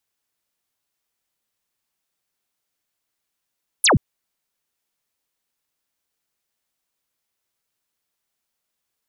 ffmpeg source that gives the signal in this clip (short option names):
-f lavfi -i "aevalsrc='0.266*clip(t/0.002,0,1)*clip((0.13-t)/0.002,0,1)*sin(2*PI*12000*0.13/log(88/12000)*(exp(log(88/12000)*t/0.13)-1))':d=0.13:s=44100"